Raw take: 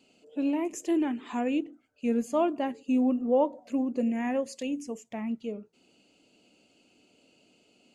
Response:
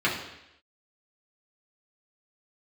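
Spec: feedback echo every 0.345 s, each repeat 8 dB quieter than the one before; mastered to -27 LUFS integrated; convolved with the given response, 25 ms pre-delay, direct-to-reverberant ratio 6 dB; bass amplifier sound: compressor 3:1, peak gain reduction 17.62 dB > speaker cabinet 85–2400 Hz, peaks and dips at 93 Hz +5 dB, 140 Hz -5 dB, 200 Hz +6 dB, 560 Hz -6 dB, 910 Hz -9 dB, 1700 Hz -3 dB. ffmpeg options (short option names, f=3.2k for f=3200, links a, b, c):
-filter_complex "[0:a]aecho=1:1:345|690|1035|1380|1725:0.398|0.159|0.0637|0.0255|0.0102,asplit=2[a][b];[1:a]atrim=start_sample=2205,adelay=25[c];[b][c]afir=irnorm=-1:irlink=0,volume=-20dB[d];[a][d]amix=inputs=2:normalize=0,acompressor=threshold=-43dB:ratio=3,highpass=f=85:w=0.5412,highpass=f=85:w=1.3066,equalizer=f=93:t=q:w=4:g=5,equalizer=f=140:t=q:w=4:g=-5,equalizer=f=200:t=q:w=4:g=6,equalizer=f=560:t=q:w=4:g=-6,equalizer=f=910:t=q:w=4:g=-9,equalizer=f=1.7k:t=q:w=4:g=-3,lowpass=f=2.4k:w=0.5412,lowpass=f=2.4k:w=1.3066,volume=15dB"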